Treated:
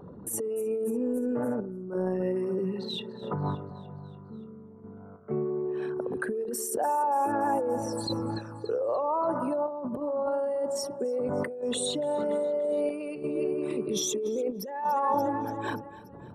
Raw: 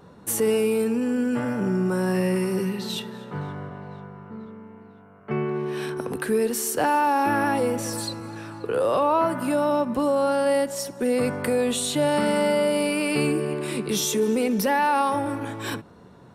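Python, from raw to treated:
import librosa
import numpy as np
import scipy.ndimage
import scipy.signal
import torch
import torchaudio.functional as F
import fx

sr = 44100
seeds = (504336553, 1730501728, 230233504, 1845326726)

y = fx.envelope_sharpen(x, sr, power=2.0)
y = fx.chopper(y, sr, hz=0.62, depth_pct=60, duty_pct=20)
y = fx.echo_feedback(y, sr, ms=289, feedback_pct=57, wet_db=-18)
y = fx.over_compress(y, sr, threshold_db=-32.0, ratio=-1.0)
y = fx.dynamic_eq(y, sr, hz=860.0, q=1.3, threshold_db=-48.0, ratio=4.0, max_db=8)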